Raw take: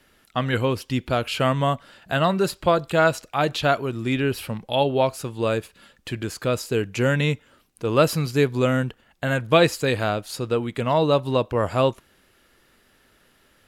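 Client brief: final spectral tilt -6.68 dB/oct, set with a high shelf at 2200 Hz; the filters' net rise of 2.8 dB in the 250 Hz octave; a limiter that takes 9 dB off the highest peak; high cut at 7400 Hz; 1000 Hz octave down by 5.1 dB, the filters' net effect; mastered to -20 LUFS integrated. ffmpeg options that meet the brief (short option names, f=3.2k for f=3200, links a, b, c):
-af "lowpass=7.4k,equalizer=f=250:t=o:g=4,equalizer=f=1k:t=o:g=-5.5,highshelf=f=2.2k:g=-9,volume=6.5dB,alimiter=limit=-9dB:level=0:latency=1"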